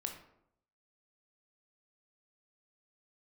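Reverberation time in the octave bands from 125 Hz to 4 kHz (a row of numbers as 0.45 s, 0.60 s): 0.85 s, 0.80 s, 0.80 s, 0.70 s, 0.55 s, 0.40 s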